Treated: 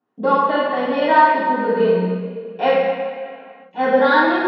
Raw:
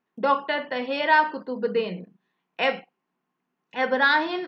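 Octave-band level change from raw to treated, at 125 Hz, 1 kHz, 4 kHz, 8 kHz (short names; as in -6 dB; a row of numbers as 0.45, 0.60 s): +14.0 dB, +8.0 dB, +0.5 dB, n/a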